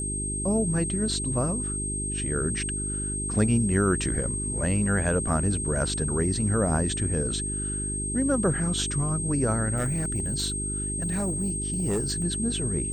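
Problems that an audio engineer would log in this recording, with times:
mains hum 50 Hz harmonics 8 −33 dBFS
whistle 8,400 Hz −30 dBFS
0:09.76–0:12.24: clipping −22 dBFS

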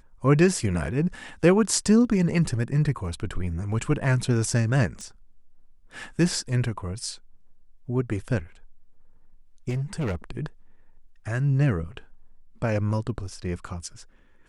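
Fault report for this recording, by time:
0:05.01: click −28 dBFS
0:09.69–0:10.16: clipping −24 dBFS

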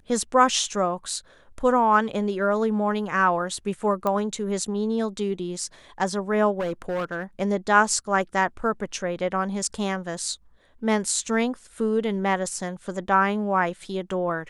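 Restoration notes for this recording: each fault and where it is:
0:04.07: click −13 dBFS
0:06.59–0:07.24: clipping −23.5 dBFS

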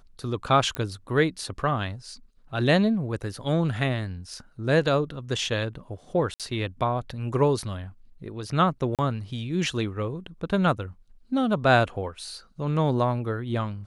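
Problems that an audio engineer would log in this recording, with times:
0:00.75: click −14 dBFS
0:06.34–0:06.40: drop-out 57 ms
0:08.95–0:08.99: drop-out 37 ms

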